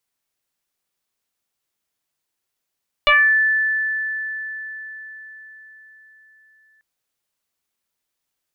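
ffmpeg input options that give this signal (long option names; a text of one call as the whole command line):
ffmpeg -f lavfi -i "aevalsrc='0.335*pow(10,-3*t/4.89)*sin(2*PI*1750*t+2.9*pow(10,-3*t/0.39)*sin(2*PI*0.33*1750*t))':duration=3.74:sample_rate=44100" out.wav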